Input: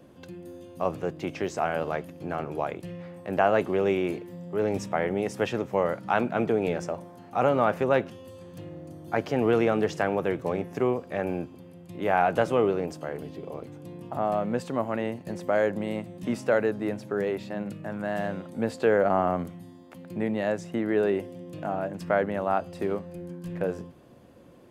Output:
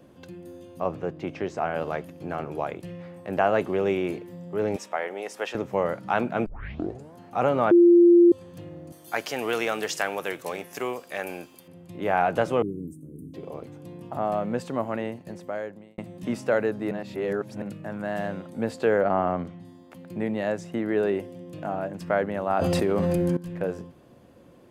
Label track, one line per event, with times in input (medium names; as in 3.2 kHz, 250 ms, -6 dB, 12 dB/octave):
0.800000	1.760000	low-pass 2.7 kHz 6 dB/octave
4.760000	5.550000	high-pass 550 Hz
6.460000	6.460000	tape start 0.69 s
7.710000	8.320000	bleep 346 Hz -11 dBFS
8.920000	11.680000	tilt EQ +4.5 dB/octave
12.620000	13.340000	elliptic band-stop 300–8900 Hz
14.910000	15.980000	fade out
16.910000	17.620000	reverse
19.010000	19.650000	low-pass 4.8 kHz
22.500000	23.370000	level flattener amount 100%